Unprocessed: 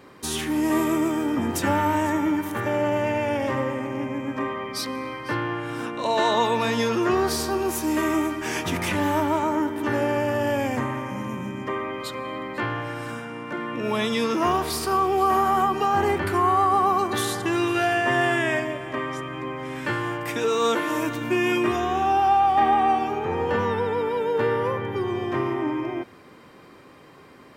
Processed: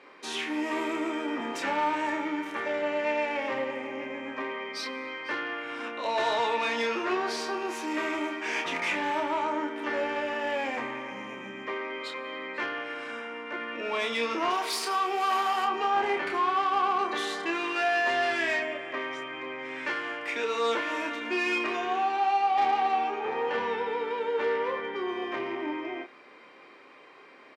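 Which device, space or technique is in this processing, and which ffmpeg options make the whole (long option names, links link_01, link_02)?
intercom: -filter_complex "[0:a]highpass=360,lowpass=4800,equalizer=frequency=2300:width_type=o:width=0.46:gain=7,asoftclip=type=tanh:threshold=-18.5dB,highpass=frequency=180:poles=1,asettb=1/sr,asplit=3[link_01][link_02][link_03];[link_01]atrim=end=14.504[link_04];[link_02]atrim=start=14.5:end=15.65,asetpts=PTS-STARTPTS,afade=type=in:duration=0.004:curve=qsin,afade=type=out:start_time=1.146:duration=0.004:curve=qsin,aemphasis=mode=production:type=bsi[link_05];[link_03]atrim=start=15.646[link_06];[link_04][link_05]acrossfade=duration=0.004:curve1=hsin:curve2=qsin[link_07];[link_07][link_06]acrossfade=duration=0.004:curve1=qsin:curve2=hsin,asplit=2[link_08][link_09];[link_09]adelay=30,volume=-5.5dB[link_10];[link_08][link_10]amix=inputs=2:normalize=0,volume=-3.5dB"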